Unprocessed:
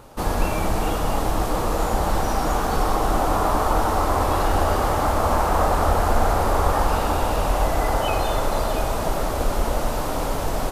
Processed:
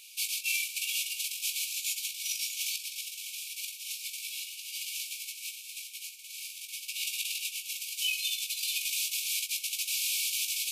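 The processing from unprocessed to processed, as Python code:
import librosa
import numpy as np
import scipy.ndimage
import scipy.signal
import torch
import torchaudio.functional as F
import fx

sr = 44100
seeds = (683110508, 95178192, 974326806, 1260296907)

p1 = fx.over_compress(x, sr, threshold_db=-23.0, ratio=-0.5)
p2 = fx.brickwall_highpass(p1, sr, low_hz=2200.0)
p3 = p2 + fx.room_early_taps(p2, sr, ms=(19, 66), db=(-7.0, -15.5), dry=0)
y = p3 * librosa.db_to_amplitude(3.0)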